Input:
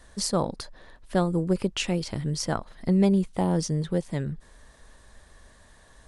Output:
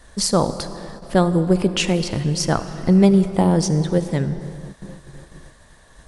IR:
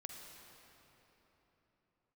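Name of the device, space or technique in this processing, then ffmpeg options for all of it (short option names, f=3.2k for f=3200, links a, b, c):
keyed gated reverb: -filter_complex "[0:a]asplit=3[a][b][c];[1:a]atrim=start_sample=2205[d];[b][d]afir=irnorm=-1:irlink=0[e];[c]apad=whole_len=267717[f];[e][f]sidechaingate=range=-33dB:threshold=-50dB:ratio=16:detection=peak,volume=0dB[g];[a][g]amix=inputs=2:normalize=0,volume=4dB"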